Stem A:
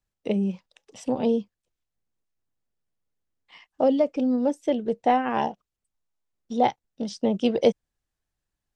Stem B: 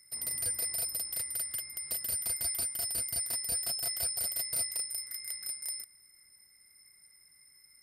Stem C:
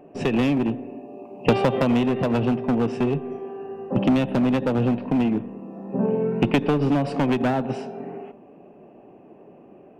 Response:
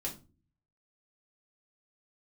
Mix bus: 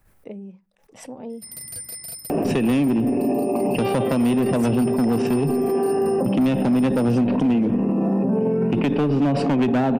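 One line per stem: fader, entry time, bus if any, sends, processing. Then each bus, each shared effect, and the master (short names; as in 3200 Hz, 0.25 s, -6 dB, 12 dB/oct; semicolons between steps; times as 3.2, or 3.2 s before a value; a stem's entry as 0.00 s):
-12.0 dB, 0.00 s, no bus, send -20.5 dB, band shelf 4600 Hz -10.5 dB; backwards sustainer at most 99 dB/s
-1.5 dB, 1.30 s, bus A, no send, bell 150 Hz +8.5 dB 0.99 oct
0.0 dB, 2.30 s, bus A, no send, fast leveller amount 100%
bus A: 0.0 dB, bell 230 Hz +4.5 dB 1.3 oct; compressor, threshold -12 dBFS, peak gain reduction 6.5 dB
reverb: on, RT60 0.35 s, pre-delay 3 ms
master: limiter -14 dBFS, peak gain reduction 9.5 dB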